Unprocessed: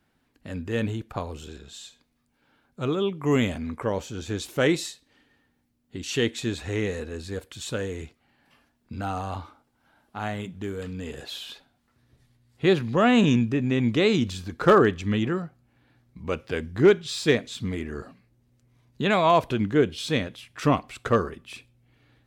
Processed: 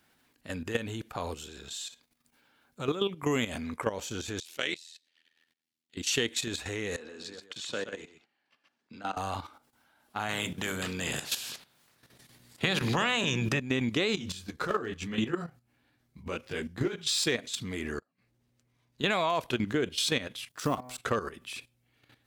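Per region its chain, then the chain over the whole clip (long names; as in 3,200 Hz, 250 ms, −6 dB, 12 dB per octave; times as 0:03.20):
0:04.40–0:05.97: meter weighting curve D + output level in coarse steps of 23 dB + amplitude modulation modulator 82 Hz, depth 65%
0:06.96–0:09.17: three-way crossover with the lows and the highs turned down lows −21 dB, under 150 Hz, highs −19 dB, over 6,600 Hz + output level in coarse steps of 15 dB + single-tap delay 127 ms −6.5 dB
0:10.28–0:13.58: ceiling on every frequency bin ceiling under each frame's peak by 19 dB + parametric band 140 Hz +12.5 dB 1.6 octaves + mains-hum notches 50/100/150/200/250/300/350 Hz
0:14.15–0:16.99: low-shelf EQ 220 Hz +5 dB + downward compressor 8 to 1, threshold −17 dBFS + micro pitch shift up and down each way 29 cents
0:17.99–0:19.01: high-shelf EQ 7,500 Hz −10 dB + gate with flip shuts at −37 dBFS, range −30 dB
0:20.49–0:20.98: mu-law and A-law mismatch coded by A + parametric band 2,300 Hz −11 dB 0.96 octaves + hum removal 125.8 Hz, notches 19
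whole clip: output level in coarse steps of 12 dB; spectral tilt +2 dB per octave; downward compressor, threshold −29 dBFS; level +4.5 dB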